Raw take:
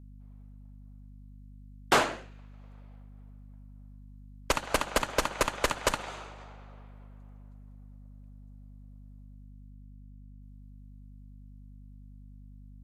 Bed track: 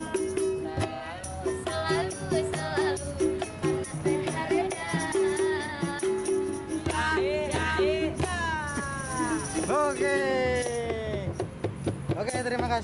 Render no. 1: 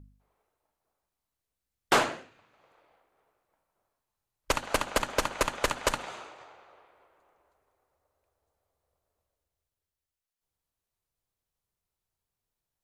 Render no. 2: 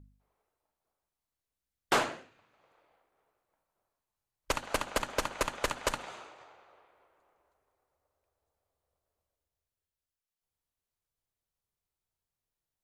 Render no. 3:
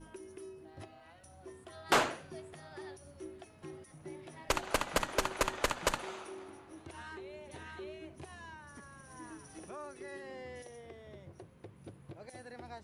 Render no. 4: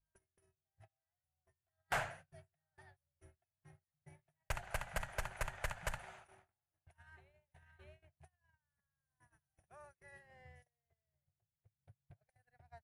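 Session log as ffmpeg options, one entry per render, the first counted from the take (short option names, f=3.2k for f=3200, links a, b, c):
-af "bandreject=f=50:t=h:w=4,bandreject=f=100:t=h:w=4,bandreject=f=150:t=h:w=4,bandreject=f=200:t=h:w=4,bandreject=f=250:t=h:w=4"
-af "volume=-4dB"
-filter_complex "[1:a]volume=-20.5dB[a];[0:a][a]amix=inputs=2:normalize=0"
-af "agate=range=-33dB:threshold=-45dB:ratio=16:detection=peak,firequalizer=gain_entry='entry(130,0);entry(280,-28);entry(700,-6);entry(1100,-15);entry(1600,-5);entry(3800,-17);entry(9800,-9)':delay=0.05:min_phase=1"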